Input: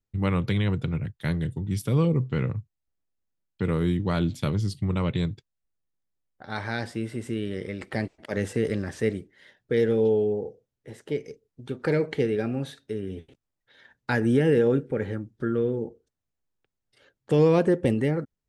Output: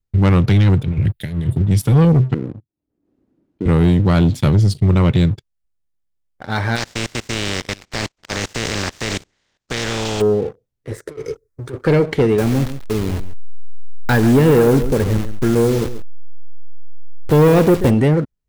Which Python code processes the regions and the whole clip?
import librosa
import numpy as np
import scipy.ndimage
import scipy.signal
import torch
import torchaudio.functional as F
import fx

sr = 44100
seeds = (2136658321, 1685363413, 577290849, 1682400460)

y = fx.chain(x, sr, fx.high_shelf(hz=6000.0, db=9.0),
    fx.over_compress(threshold_db=-31.0, ratio=-0.5),
    fx.fixed_phaser(hz=2700.0, stages=4), at=(0.82, 1.62))
y = fx.chain(y, sr, fx.bandpass_q(hz=300.0, q=3.7),
    fx.pre_swell(db_per_s=63.0), at=(2.34, 3.66))
y = fx.spec_flatten(y, sr, power=0.3, at=(6.75, 10.2), fade=0.02)
y = fx.steep_lowpass(y, sr, hz=7500.0, slope=36, at=(6.75, 10.2), fade=0.02)
y = fx.level_steps(y, sr, step_db=17, at=(6.75, 10.2), fade=0.02)
y = fx.chain(y, sr, fx.fixed_phaser(hz=800.0, stages=6),
    fx.over_compress(threshold_db=-39.0, ratio=-1.0), at=(10.91, 11.86))
y = fx.chain(y, sr, fx.delta_hold(step_db=-32.5),
    fx.echo_single(ms=137, db=-13.5), at=(12.38, 17.9))
y = fx.low_shelf(y, sr, hz=93.0, db=11.0)
y = fx.leveller(y, sr, passes=2)
y = F.gain(torch.from_numpy(y), 3.5).numpy()